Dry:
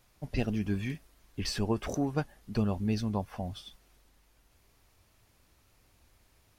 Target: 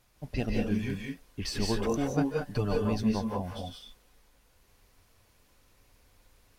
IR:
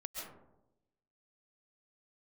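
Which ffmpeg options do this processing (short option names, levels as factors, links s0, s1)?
-filter_complex "[0:a]asettb=1/sr,asplit=3[s0][s1][s2];[s0]atrim=end=2.204[s3];[s1]atrim=start=2.2:end=2.85,asetpts=PTS-STARTPTS,afade=t=in:d=0.004:c=qsin,afade=t=out:st=0.646:d=0.004:c=qsin,aecho=1:1:6.8:0.9,atrim=end_sample=28665[s4];[s2]atrim=start=2.846[s5];[s3][s4]acrossfade=d=0.004:c1=hsin:c2=qsin[s6];[s6][s5]acrossfade=d=0.004:c1=qsin:c2=hsin[s7];[1:a]atrim=start_sample=2205,afade=t=out:st=0.22:d=0.01,atrim=end_sample=10143,asetrate=34398,aresample=44100[s8];[s7][s8]afir=irnorm=-1:irlink=0,volume=1.41"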